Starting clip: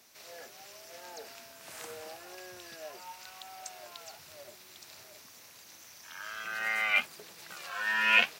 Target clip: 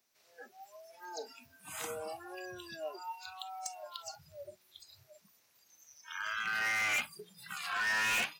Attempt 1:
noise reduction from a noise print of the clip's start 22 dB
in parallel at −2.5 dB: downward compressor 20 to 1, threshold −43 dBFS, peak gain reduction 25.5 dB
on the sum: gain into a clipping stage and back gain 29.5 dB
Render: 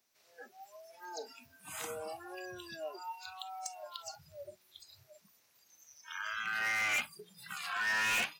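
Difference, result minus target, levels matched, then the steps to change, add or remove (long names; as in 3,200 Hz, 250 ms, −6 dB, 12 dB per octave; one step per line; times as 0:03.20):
downward compressor: peak gain reduction +8 dB
change: downward compressor 20 to 1, threshold −34.5 dBFS, peak gain reduction 17.5 dB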